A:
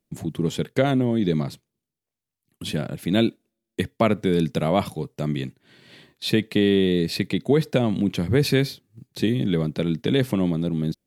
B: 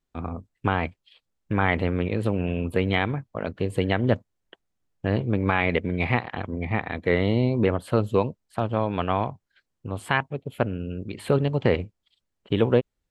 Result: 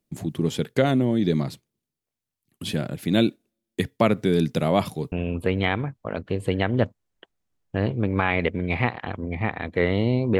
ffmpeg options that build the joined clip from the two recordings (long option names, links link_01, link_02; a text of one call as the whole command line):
ffmpeg -i cue0.wav -i cue1.wav -filter_complex "[0:a]apad=whole_dur=10.39,atrim=end=10.39,atrim=end=5.122[link_01];[1:a]atrim=start=2.418:end=7.69[link_02];[link_01][link_02]acrossfade=duration=0.004:curve1=hsin:curve2=hsin" out.wav